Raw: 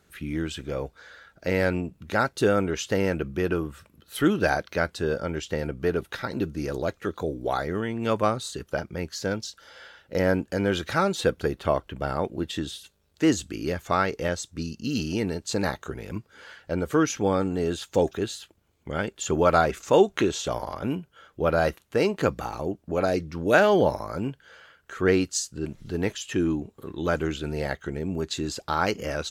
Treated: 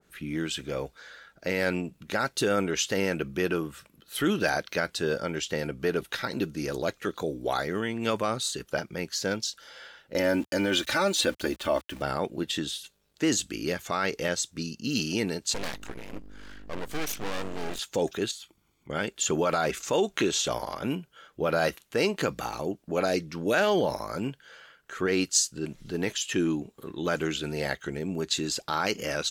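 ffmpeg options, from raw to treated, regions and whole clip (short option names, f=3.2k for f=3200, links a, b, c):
-filter_complex "[0:a]asettb=1/sr,asplit=3[a][b][c];[a]atrim=end=10.154[d];[b]atrim=start=10.15:end=12.02,asetpts=PTS-STARTPTS,afade=t=in:d=0.004:c=qsin,afade=t=out:st=1.866:d=0.004:c=qsin,aecho=1:1:3.4:0.66,atrim=end_sample=82467,aeval=exprs='val(0)*gte(abs(val(0)),0.00562)':c=same[e];[c]atrim=start=12.016[f];[d][e]acrossfade=d=0.004:c1=hsin:c2=qsin[g];[g][f]acrossfade=d=0.004:c1=qsin:c2=hsin,asettb=1/sr,asplit=3[h][i][j];[h]atrim=end=15.544[k];[i]atrim=start=15.54:end=17.79,asetpts=PTS-STARTPTS,afade=t=in:d=0.004:c=qsin,afade=t=out:st=2.246:d=0.004:c=qsin,aeval=exprs='val(0)+0.0141*(sin(2*PI*50*n/s)+sin(2*PI*2*50*n/s)/2+sin(2*PI*3*50*n/s)/3+sin(2*PI*4*50*n/s)/4+sin(2*PI*5*50*n/s)/5)':c=same,aeval=exprs='(tanh(17.8*val(0)+0.65)-tanh(0.65))/17.8':c=same,aeval=exprs='abs(val(0))':c=same[l];[j]atrim=start=17.786[m];[k][l]acrossfade=d=0.004:c1=hsin:c2=qsin[n];[n][m]acrossfade=d=0.004:c1=qsin:c2=hsin,asettb=1/sr,asplit=3[o][p][q];[o]atrim=end=18.314[r];[p]atrim=start=18.31:end=18.9,asetpts=PTS-STARTPTS,afade=t=in:d=0.004:c=qsin,afade=t=out:st=0.586:d=0.004:c=qsin,equalizer=f=330:w=4.4:g=3,aecho=1:1:0.9:0.52,atrim=end_sample=26019,acompressor=threshold=-50dB:ratio=2:attack=3.2:release=140:knee=1:detection=peak[s];[q]atrim=start=18.896[t];[r][s]acrossfade=d=0.004:c1=hsin:c2=qsin[u];[u][t]acrossfade=d=0.004:c1=qsin:c2=hsin,equalizer=f=82:t=o:w=0.47:g=-14.5,alimiter=limit=-14.5dB:level=0:latency=1:release=25,adynamicequalizer=threshold=0.00794:dfrequency=1800:dqfactor=0.7:tfrequency=1800:tqfactor=0.7:attack=5:release=100:ratio=0.375:range=3.5:mode=boostabove:tftype=highshelf,volume=-1.5dB"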